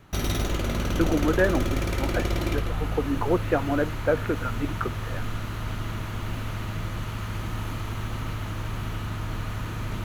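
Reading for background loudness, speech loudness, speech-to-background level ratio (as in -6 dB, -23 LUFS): -30.5 LUFS, -28.0 LUFS, 2.5 dB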